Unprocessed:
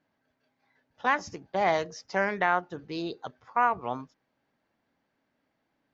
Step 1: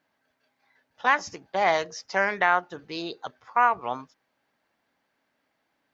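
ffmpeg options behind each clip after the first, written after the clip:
ffmpeg -i in.wav -af "lowshelf=frequency=450:gain=-10.5,volume=5.5dB" out.wav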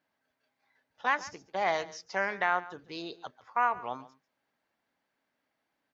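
ffmpeg -i in.wav -af "aecho=1:1:141:0.126,volume=-6.5dB" out.wav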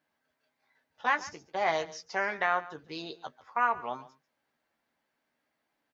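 ffmpeg -i in.wav -filter_complex "[0:a]asplit=2[link_01][link_02];[link_02]adelay=13,volume=-7.5dB[link_03];[link_01][link_03]amix=inputs=2:normalize=0" out.wav

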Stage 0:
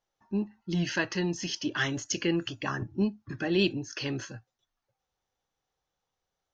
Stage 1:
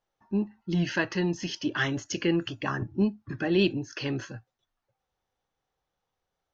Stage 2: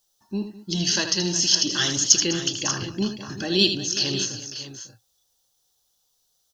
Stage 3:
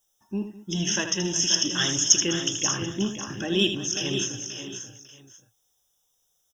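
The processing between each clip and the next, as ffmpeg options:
ffmpeg -i in.wav -af "aemphasis=mode=reproduction:type=50kf,volume=2.5dB" out.wav
ffmpeg -i in.wav -af "aecho=1:1:79|204|364|550|587:0.376|0.133|0.168|0.2|0.224,aexciter=amount=10.6:drive=6.2:freq=3400,volume=-1dB" out.wav
ffmpeg -i in.wav -af "asuperstop=centerf=4400:order=20:qfactor=3.4,aecho=1:1:532:0.316,volume=-1.5dB" out.wav

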